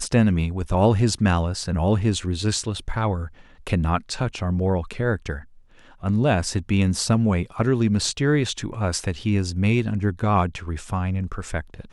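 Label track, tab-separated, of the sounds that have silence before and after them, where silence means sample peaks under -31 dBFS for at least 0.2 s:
3.670000	5.390000	sound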